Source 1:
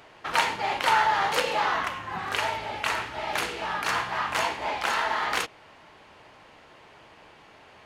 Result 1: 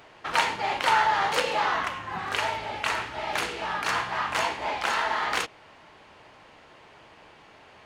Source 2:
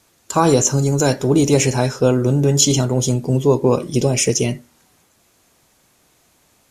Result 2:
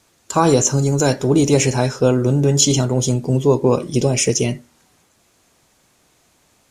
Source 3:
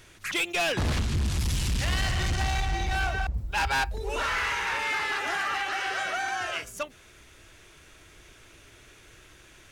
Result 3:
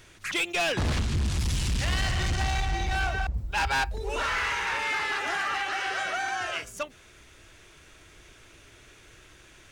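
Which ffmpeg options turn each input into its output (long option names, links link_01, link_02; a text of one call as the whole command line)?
ffmpeg -i in.wav -af "equalizer=frequency=12000:width_type=o:width=0.28:gain=-7" out.wav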